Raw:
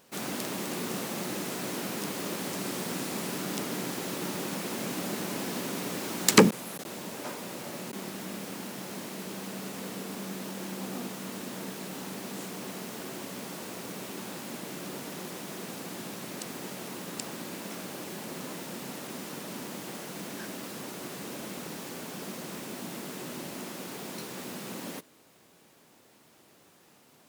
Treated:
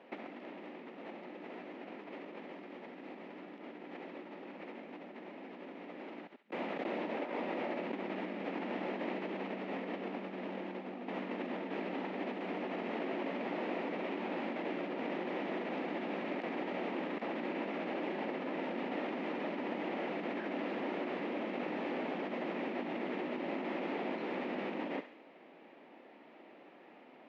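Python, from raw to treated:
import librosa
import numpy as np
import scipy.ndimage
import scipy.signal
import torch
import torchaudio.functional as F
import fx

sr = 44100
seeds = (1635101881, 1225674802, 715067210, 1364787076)

y = fx.over_compress(x, sr, threshold_db=-40.0, ratio=-0.5)
y = fx.cabinet(y, sr, low_hz=250.0, low_slope=24, high_hz=2300.0, hz=(420.0, 1100.0, 1500.0), db=(-4, -7, -9))
y = fx.echo_thinned(y, sr, ms=68, feedback_pct=55, hz=1100.0, wet_db=-9.5)
y = y * 10.0 ** (4.0 / 20.0)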